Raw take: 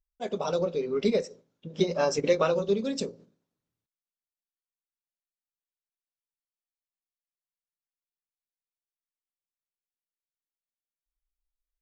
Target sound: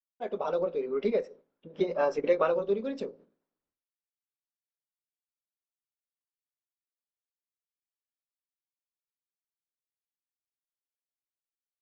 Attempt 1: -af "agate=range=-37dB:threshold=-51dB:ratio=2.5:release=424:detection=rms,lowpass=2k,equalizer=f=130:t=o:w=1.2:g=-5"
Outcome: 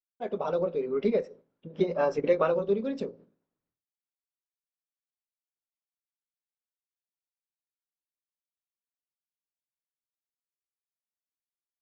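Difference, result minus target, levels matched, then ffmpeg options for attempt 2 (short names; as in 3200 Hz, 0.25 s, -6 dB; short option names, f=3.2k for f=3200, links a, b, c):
125 Hz band +5.5 dB
-af "agate=range=-37dB:threshold=-51dB:ratio=2.5:release=424:detection=rms,lowpass=2k,equalizer=f=130:t=o:w=1.2:g=-16"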